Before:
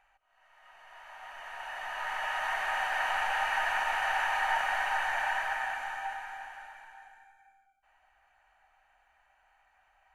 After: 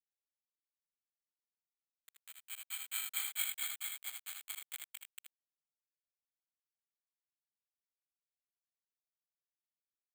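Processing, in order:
source passing by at 0:03.27, 12 m/s, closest 2.9 metres
parametric band 430 Hz −11.5 dB 1.5 octaves
in parallel at +1 dB: brickwall limiter −29.5 dBFS, peak gain reduction 7 dB
on the sum: granular cloud 152 ms, grains 4.5 per second, spray 15 ms, pitch spread up and down by 0 semitones
bit reduction 6 bits
band-pass filter sweep 7,200 Hz → 260 Hz, 0:04.02–0:07.49
formants moved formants +4 semitones
on a send: ambience of single reflections 65 ms −15 dB, 79 ms −4.5 dB
on the sum: bad sample-rate conversion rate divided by 8×, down filtered, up zero stuff
level +8 dB

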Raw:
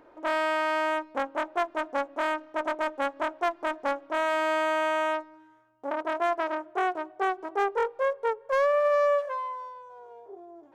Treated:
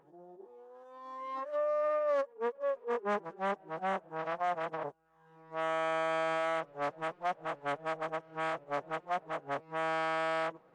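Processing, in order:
played backwards from end to start
phase-vocoder pitch shift with formants kept −11.5 semitones
level −6 dB

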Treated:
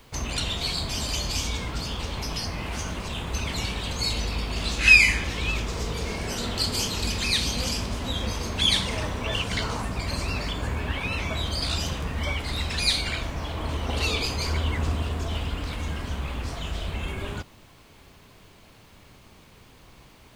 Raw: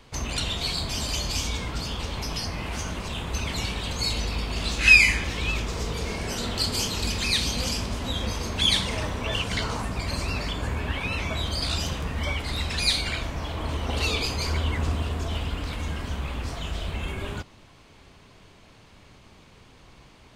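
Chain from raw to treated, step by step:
bit reduction 10 bits

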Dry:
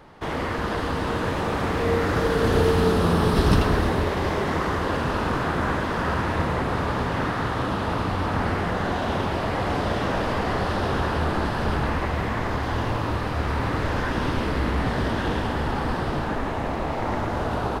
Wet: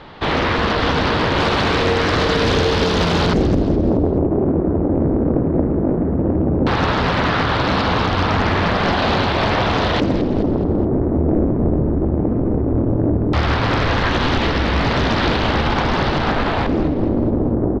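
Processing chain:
0:01.40–0:03.26: high-shelf EQ 5,000 Hz +9.5 dB
brickwall limiter −18 dBFS, peak gain reduction 11 dB
auto-filter low-pass square 0.15 Hz 320–3,800 Hz
repeating echo 212 ms, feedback 43%, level −12.5 dB
highs frequency-modulated by the lows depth 0.81 ms
level +9 dB

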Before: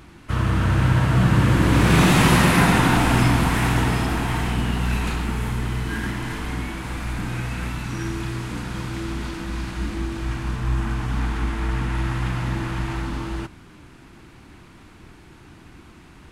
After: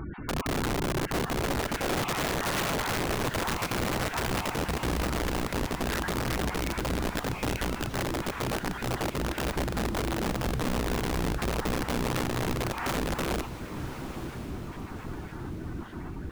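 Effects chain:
time-frequency cells dropped at random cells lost 22%
low-pass filter 2,000 Hz 6 dB per octave
gate on every frequency bin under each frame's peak −20 dB strong
in parallel at −1 dB: brickwall limiter −18 dBFS, peak gain reduction 11.5 dB
on the sum: downward compressor 6 to 1, threshold −31 dBFS, peak gain reduction 19 dB
wrap-around overflow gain 28 dB
on a send: feedback delay with all-pass diffusion 1,023 ms, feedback 51%, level −12 dB
on the sum: level +4 dB

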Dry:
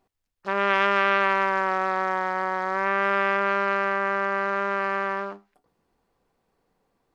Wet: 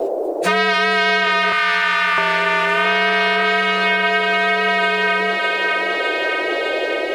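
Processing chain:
partials spread apart or drawn together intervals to 118%
noise in a band 330–690 Hz −44 dBFS
0:01.52–0:02.18: elliptic band-stop filter 150–1,100 Hz
feedback echo with a high-pass in the loop 608 ms, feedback 55%, high-pass 800 Hz, level −6 dB
multiband upward and downward compressor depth 100%
level +7 dB

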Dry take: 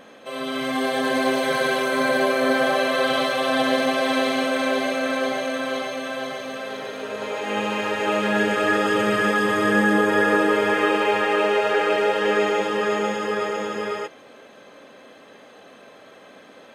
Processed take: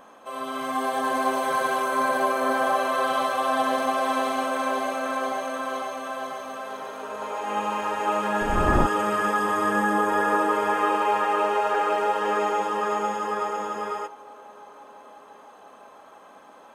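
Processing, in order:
0:08.40–0:08.85: wind on the microphone 310 Hz −16 dBFS
octave-band graphic EQ 125/250/500/1,000/2,000/4,000 Hz −11/−4/−7/+8/−9/−9 dB
on a send: feedback echo with a band-pass in the loop 676 ms, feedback 71%, band-pass 690 Hz, level −22 dB

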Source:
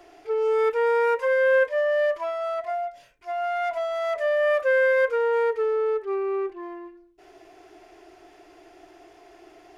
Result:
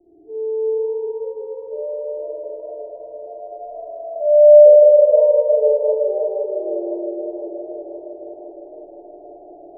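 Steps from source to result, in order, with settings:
Chebyshev low-pass filter 880 Hz, order 6
spring reverb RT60 3.7 s, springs 52 ms, chirp 55 ms, DRR −8 dB
low-pass filter sweep 310 Hz → 630 Hz, 0:01.43–0:04.52
feedback echo with a swinging delay time 513 ms, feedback 65%, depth 75 cents, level −11 dB
level −6 dB

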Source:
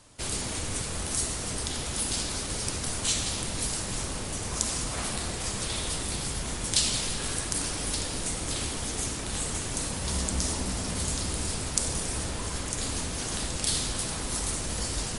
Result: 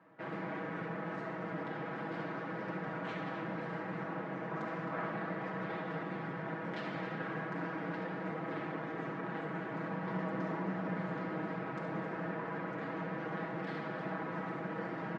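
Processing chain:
elliptic band-pass filter 170–1,800 Hz, stop band 80 dB
mains-hum notches 50/100/150/200/250/300/350/400/450/500 Hz
comb filter 6.2 ms, depth 85%
loudspeakers that aren't time-aligned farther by 24 metres −10 dB, 91 metres −11 dB
level −3 dB

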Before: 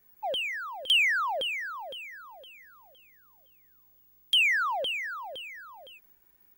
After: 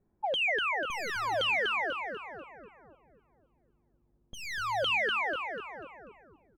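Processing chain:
wavefolder on the positive side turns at −27.5 dBFS
low-pass that shuts in the quiet parts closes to 470 Hz, open at −25 dBFS
compressor whose output falls as the input rises −32 dBFS, ratio −0.5
echo with shifted repeats 245 ms, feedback 41%, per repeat −110 Hz, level −4 dB
level +1.5 dB

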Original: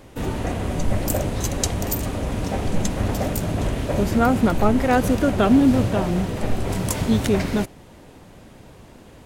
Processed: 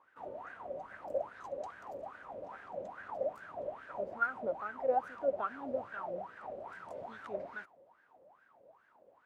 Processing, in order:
LFO wah 2.4 Hz 530–1,600 Hz, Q 13
level −1 dB

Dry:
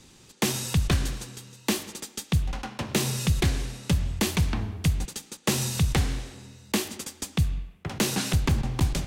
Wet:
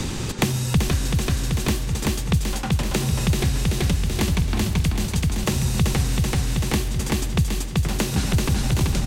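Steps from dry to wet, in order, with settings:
low-shelf EQ 260 Hz +3.5 dB
repeating echo 383 ms, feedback 57%, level −3 dB
multiband upward and downward compressor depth 100%

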